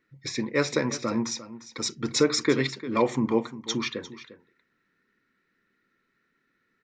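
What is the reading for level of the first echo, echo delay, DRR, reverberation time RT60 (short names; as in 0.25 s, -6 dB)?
-15.0 dB, 0.35 s, none, none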